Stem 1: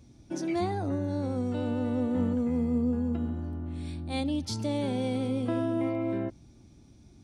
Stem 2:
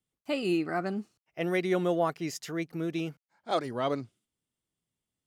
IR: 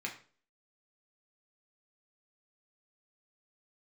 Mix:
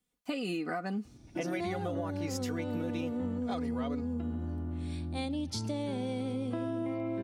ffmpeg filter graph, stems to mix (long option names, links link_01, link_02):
-filter_complex "[0:a]adelay=1050,volume=0dB[link_01];[1:a]aecho=1:1:4.1:0.65,acompressor=threshold=-30dB:ratio=6,volume=2.5dB[link_02];[link_01][link_02]amix=inputs=2:normalize=0,acompressor=threshold=-31dB:ratio=6"